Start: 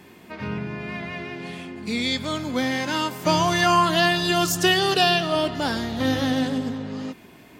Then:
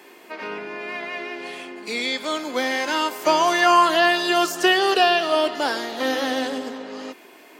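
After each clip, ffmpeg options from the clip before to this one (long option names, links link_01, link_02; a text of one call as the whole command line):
ffmpeg -i in.wav -filter_complex "[0:a]bandreject=frequency=3600:width=20,acrossover=split=2800[link_01][link_02];[link_02]acompressor=threshold=-31dB:ratio=4:attack=1:release=60[link_03];[link_01][link_03]amix=inputs=2:normalize=0,highpass=frequency=330:width=0.5412,highpass=frequency=330:width=1.3066,volume=3.5dB" out.wav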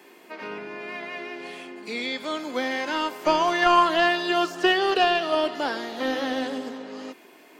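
ffmpeg -i in.wav -filter_complex "[0:a]acrossover=split=4800[link_01][link_02];[link_02]acompressor=threshold=-45dB:ratio=4:attack=1:release=60[link_03];[link_01][link_03]amix=inputs=2:normalize=0,aeval=exprs='0.596*(cos(1*acos(clip(val(0)/0.596,-1,1)))-cos(1*PI/2))+0.0668*(cos(3*acos(clip(val(0)/0.596,-1,1)))-cos(3*PI/2))':channel_layout=same,lowshelf=frequency=170:gain=8.5,volume=-1dB" out.wav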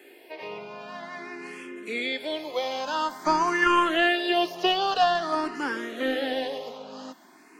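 ffmpeg -i in.wav -filter_complex "[0:a]asplit=2[link_01][link_02];[link_02]afreqshift=0.49[link_03];[link_01][link_03]amix=inputs=2:normalize=1,volume=1.5dB" out.wav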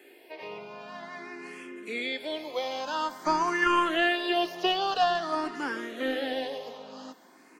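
ffmpeg -i in.wav -af "aecho=1:1:452:0.0794,volume=-3dB" out.wav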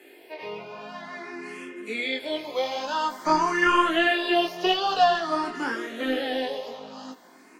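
ffmpeg -i in.wav -af "flanger=delay=18:depth=5.9:speed=1,volume=6.5dB" -ar 44100 -c:a ac3 -b:a 96k out.ac3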